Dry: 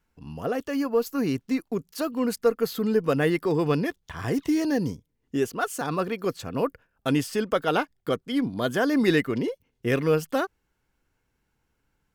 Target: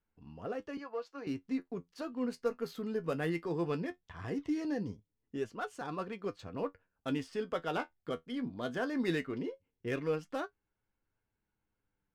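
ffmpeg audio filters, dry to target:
-filter_complex "[0:a]asettb=1/sr,asplit=3[a][b][c];[a]atrim=end=2.414[d];[b]atrim=start=2.41:end=3.71,asetpts=PTS-STARTPTS,afade=t=in:d=0.004:c=qsin,afade=t=out:st=1.296:d=0.004:c=qsin,highshelf=f=11k:g=12[e];[c]atrim=start=3.706[f];[d][e]acrossfade=d=0.004:c1=hsin:c2=qsin[g];[g][f]acrossfade=d=0.004:c1=qsin:c2=hsin,adynamicsmooth=sensitivity=4.5:basefreq=3.9k,asettb=1/sr,asplit=3[h][i][j];[h]atrim=end=0.774[k];[i]atrim=start=0.77:end=1.27,asetpts=PTS-STARTPTS,afade=t=in:d=0.004:c=qsin,afade=t=out:st=0.496:d=0.004:c=qsin,acrossover=split=400 6300:gain=0.0891 1 0.178[l][m][n];[l][m][n]amix=inputs=3:normalize=0[o];[j]atrim=start=1.266[p];[k][o]acrossfade=d=0.004:c1=hsin:c2=qsin[q];[q][p]acrossfade=d=0.004:c1=qsin:c2=hsin,flanger=delay=9.4:depth=2.9:regen=51:speed=0.18:shape=sinusoidal,volume=-7dB"

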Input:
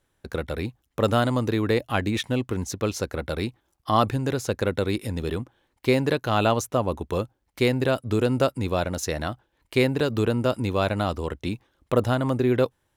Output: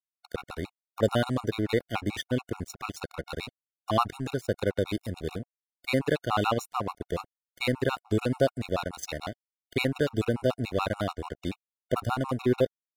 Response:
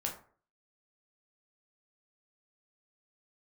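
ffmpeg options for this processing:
-af "aeval=exprs='sgn(val(0))*max(abs(val(0))-0.0188,0)':c=same,afftfilt=real='re*gt(sin(2*PI*6.9*pts/sr)*(1-2*mod(floor(b*sr/1024/730),2)),0)':imag='im*gt(sin(2*PI*6.9*pts/sr)*(1-2*mod(floor(b*sr/1024/730),2)),0)':win_size=1024:overlap=0.75"

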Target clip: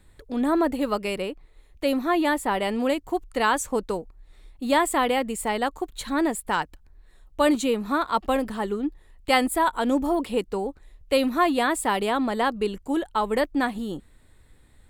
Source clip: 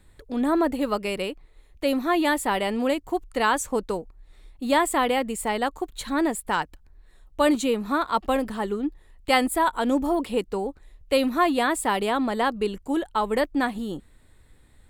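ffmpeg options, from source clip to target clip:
-filter_complex "[0:a]asplit=3[a][b][c];[a]afade=t=out:st=1.18:d=0.02[d];[b]adynamicequalizer=threshold=0.0126:dfrequency=2000:dqfactor=0.7:tfrequency=2000:tqfactor=0.7:attack=5:release=100:ratio=0.375:range=3:mode=cutabove:tftype=highshelf,afade=t=in:st=1.18:d=0.02,afade=t=out:st=2.61:d=0.02[e];[c]afade=t=in:st=2.61:d=0.02[f];[d][e][f]amix=inputs=3:normalize=0"

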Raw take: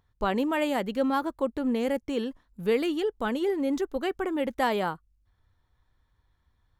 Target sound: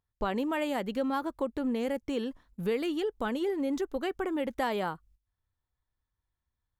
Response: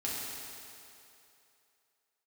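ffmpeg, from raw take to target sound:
-af "agate=range=-18dB:threshold=-58dB:ratio=16:detection=peak,acompressor=threshold=-34dB:ratio=2,volume=2dB"

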